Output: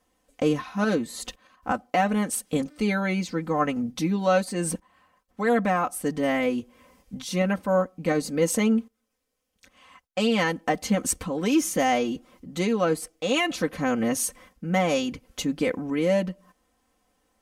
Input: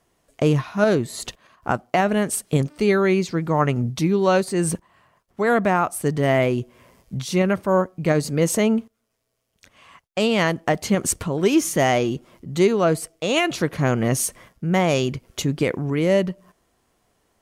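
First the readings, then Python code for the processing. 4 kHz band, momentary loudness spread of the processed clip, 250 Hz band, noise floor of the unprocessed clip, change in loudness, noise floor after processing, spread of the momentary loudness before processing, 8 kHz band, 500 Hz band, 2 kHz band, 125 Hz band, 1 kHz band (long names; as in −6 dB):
−3.5 dB, 8 LU, −3.0 dB, −72 dBFS, −4.5 dB, −75 dBFS, 8 LU, −3.5 dB, −5.5 dB, −3.5 dB, −9.0 dB, −3.0 dB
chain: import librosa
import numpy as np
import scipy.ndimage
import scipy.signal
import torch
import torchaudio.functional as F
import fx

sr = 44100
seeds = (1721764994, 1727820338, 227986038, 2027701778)

y = x + 0.87 * np.pad(x, (int(3.9 * sr / 1000.0), 0))[:len(x)]
y = y * librosa.db_to_amplitude(-6.0)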